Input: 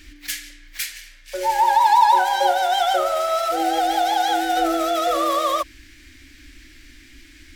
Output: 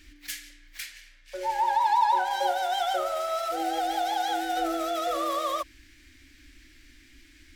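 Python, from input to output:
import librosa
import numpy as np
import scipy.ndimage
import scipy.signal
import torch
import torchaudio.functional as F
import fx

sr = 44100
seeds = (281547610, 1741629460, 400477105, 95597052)

y = fx.high_shelf(x, sr, hz=6900.0, db=-9.0, at=(0.8, 2.31))
y = y * 10.0 ** (-8.0 / 20.0)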